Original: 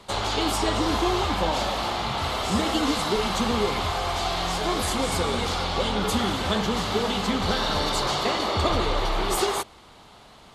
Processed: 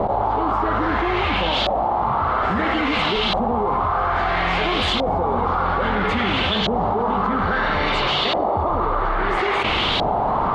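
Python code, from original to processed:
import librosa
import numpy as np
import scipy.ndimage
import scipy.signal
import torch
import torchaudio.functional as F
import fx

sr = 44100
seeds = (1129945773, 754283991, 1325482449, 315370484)

y = fx.filter_lfo_lowpass(x, sr, shape='saw_up', hz=0.6, low_hz=670.0, high_hz=3600.0, q=3.0)
y = fx.env_flatten(y, sr, amount_pct=100)
y = y * librosa.db_to_amplitude(-4.0)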